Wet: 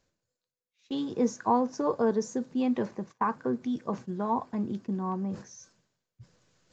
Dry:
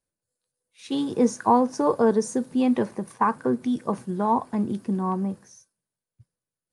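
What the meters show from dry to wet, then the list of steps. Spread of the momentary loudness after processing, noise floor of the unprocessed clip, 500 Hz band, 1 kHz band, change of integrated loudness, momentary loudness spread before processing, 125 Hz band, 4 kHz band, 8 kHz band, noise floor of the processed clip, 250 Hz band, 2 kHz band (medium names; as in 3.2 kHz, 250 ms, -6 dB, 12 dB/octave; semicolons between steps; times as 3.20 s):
9 LU, under -85 dBFS, -6.0 dB, -6.5 dB, -6.0 dB, 8 LU, -5.5 dB, -6.0 dB, -6.5 dB, under -85 dBFS, -6.0 dB, -6.0 dB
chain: band-stop 860 Hz, Q 28; gate -38 dBFS, range -16 dB; reverse; upward compressor, threshold -24 dBFS; reverse; resampled via 16 kHz; trim -6 dB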